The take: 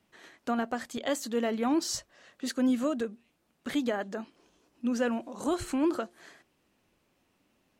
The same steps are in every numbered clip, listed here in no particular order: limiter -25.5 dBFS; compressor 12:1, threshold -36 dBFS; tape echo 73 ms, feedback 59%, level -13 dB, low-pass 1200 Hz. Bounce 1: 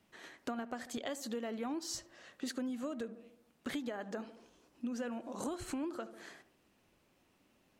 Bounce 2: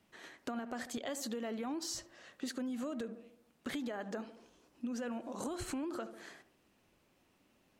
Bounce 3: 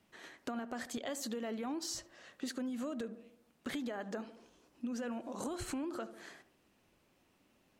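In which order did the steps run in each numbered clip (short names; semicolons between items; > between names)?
tape echo > compressor > limiter; tape echo > limiter > compressor; limiter > tape echo > compressor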